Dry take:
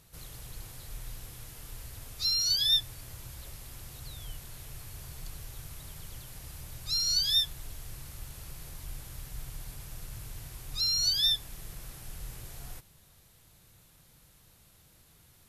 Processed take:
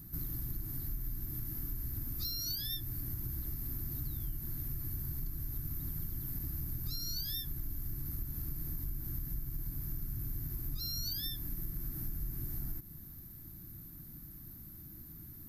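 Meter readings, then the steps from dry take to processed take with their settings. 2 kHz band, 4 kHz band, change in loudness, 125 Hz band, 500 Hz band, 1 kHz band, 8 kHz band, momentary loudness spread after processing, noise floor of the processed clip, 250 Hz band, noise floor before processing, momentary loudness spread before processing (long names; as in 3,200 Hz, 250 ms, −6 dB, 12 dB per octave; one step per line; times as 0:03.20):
−9.5 dB, −15.5 dB, −13.5 dB, +5.0 dB, −4.0 dB, −9.0 dB, −10.5 dB, 13 LU, −50 dBFS, +8.0 dB, −61 dBFS, 21 LU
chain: drawn EQ curve 120 Hz 0 dB, 320 Hz +6 dB, 460 Hz −19 dB, 1,700 Hz −11 dB, 3,000 Hz −24 dB, 4,700 Hz −14 dB, 9,400 Hz −18 dB, 14,000 Hz +11 dB
downward compressor, threshold −45 dBFS, peak gain reduction 11 dB
level +10.5 dB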